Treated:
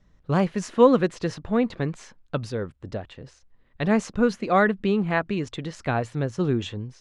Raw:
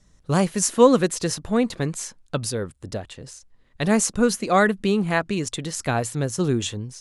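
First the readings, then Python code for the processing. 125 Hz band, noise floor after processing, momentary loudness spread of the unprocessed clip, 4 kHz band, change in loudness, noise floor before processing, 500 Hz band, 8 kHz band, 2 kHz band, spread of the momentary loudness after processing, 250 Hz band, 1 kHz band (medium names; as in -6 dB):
-1.5 dB, -61 dBFS, 15 LU, -7.5 dB, -2.0 dB, -59 dBFS, -1.5 dB, -18.0 dB, -2.0 dB, 15 LU, -1.5 dB, -1.5 dB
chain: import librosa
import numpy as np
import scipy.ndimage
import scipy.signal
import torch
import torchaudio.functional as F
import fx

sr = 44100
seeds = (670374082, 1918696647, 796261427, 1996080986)

y = scipy.signal.sosfilt(scipy.signal.butter(2, 3000.0, 'lowpass', fs=sr, output='sos'), x)
y = y * librosa.db_to_amplitude(-1.5)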